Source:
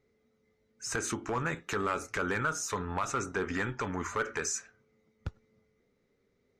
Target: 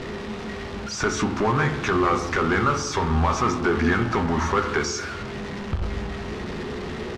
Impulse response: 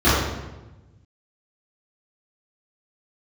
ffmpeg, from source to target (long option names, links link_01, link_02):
-filter_complex "[0:a]aeval=exprs='val(0)+0.5*0.0188*sgn(val(0))':channel_layout=same,lowpass=4800,asplit=2[link_01][link_02];[link_02]adelay=13,volume=-11dB[link_03];[link_01][link_03]amix=inputs=2:normalize=0,asplit=2[link_04][link_05];[1:a]atrim=start_sample=2205,asetrate=35280,aresample=44100[link_06];[link_05][link_06]afir=irnorm=-1:irlink=0,volume=-33.5dB[link_07];[link_04][link_07]amix=inputs=2:normalize=0,asetrate=40517,aresample=44100,volume=7.5dB"